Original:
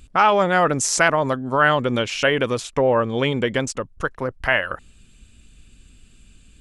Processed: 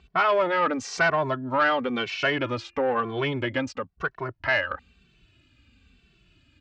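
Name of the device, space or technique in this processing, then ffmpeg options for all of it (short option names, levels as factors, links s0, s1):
barber-pole flanger into a guitar amplifier: -filter_complex "[0:a]asettb=1/sr,asplit=3[s0][s1][s2];[s0]atrim=end=2.404[s3];[s1]atrim=start=2.4:end=3.24,asetpts=PTS-STARTPTS,afade=t=in:d=0.004:c=qsin,afade=t=out:st=0.836:d=0.004:c=qsin,bandreject=f=345.7:t=h:w=4,bandreject=f=691.4:t=h:w=4,bandreject=f=1037.1:t=h:w=4,bandreject=f=1382.8:t=h:w=4,bandreject=f=1728.5:t=h:w=4,bandreject=f=2074.2:t=h:w=4,bandreject=f=2419.9:t=h:w=4,bandreject=f=2765.6:t=h:w=4[s4];[s2]atrim=start=3.236[s5];[s3][s4]acrossfade=d=0.004:c1=hsin:c2=qsin[s6];[s6][s5]acrossfade=d=0.004:c1=qsin:c2=hsin,asplit=2[s7][s8];[s8]adelay=2.2,afreqshift=-1[s9];[s7][s9]amix=inputs=2:normalize=1,asoftclip=type=tanh:threshold=0.188,highpass=83,equalizer=f=140:t=q:w=4:g=-5,equalizer=f=210:t=q:w=4:g=-7,equalizer=f=480:t=q:w=4:g=-6,equalizer=f=3500:t=q:w=4:g=-4,lowpass=f=4500:w=0.5412,lowpass=f=4500:w=1.3066,volume=1.12"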